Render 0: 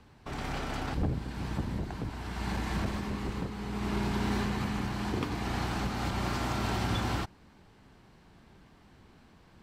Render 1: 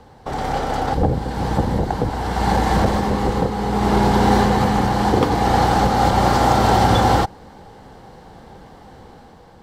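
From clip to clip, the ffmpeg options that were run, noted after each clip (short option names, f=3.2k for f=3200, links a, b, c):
-af "equalizer=f=500:t=o:w=0.33:g=12,equalizer=f=800:t=o:w=0.33:g=11,equalizer=f=2.5k:t=o:w=0.33:g=-8,dynaudnorm=f=820:g=3:m=4.5dB,volume=9dB"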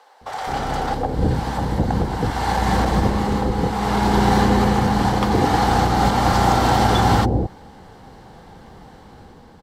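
-filter_complex "[0:a]acrossover=split=550[a][b];[a]adelay=210[c];[c][b]amix=inputs=2:normalize=0"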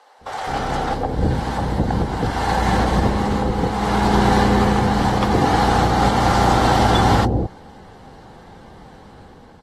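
-ar 44100 -c:a aac -b:a 32k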